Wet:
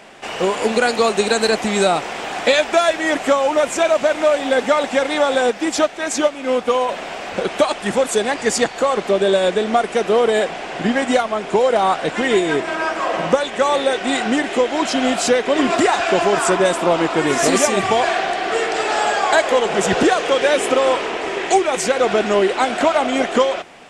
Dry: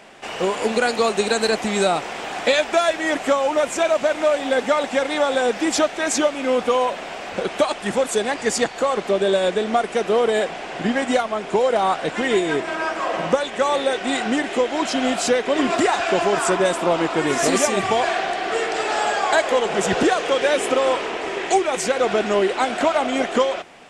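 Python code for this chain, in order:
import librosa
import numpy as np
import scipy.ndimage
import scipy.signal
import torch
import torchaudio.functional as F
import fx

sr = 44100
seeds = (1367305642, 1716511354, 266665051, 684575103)

y = fx.upward_expand(x, sr, threshold_db=-26.0, expansion=1.5, at=(5.5, 6.89))
y = F.gain(torch.from_numpy(y), 3.0).numpy()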